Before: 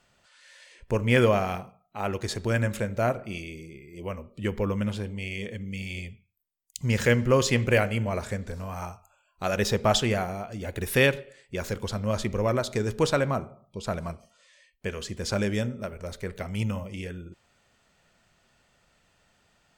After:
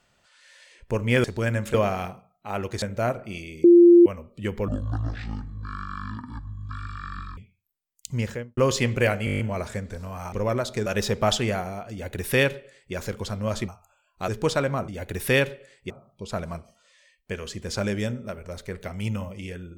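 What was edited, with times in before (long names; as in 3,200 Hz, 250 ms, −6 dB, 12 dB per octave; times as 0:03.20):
0:02.32–0:02.82: move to 0:01.24
0:03.64–0:04.06: beep over 346 Hz −8.5 dBFS
0:04.68–0:06.08: play speed 52%
0:06.77–0:07.28: fade out and dull
0:07.96: stutter 0.02 s, 8 plays
0:08.89–0:09.49: swap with 0:12.31–0:12.85
0:10.55–0:11.57: duplicate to 0:13.45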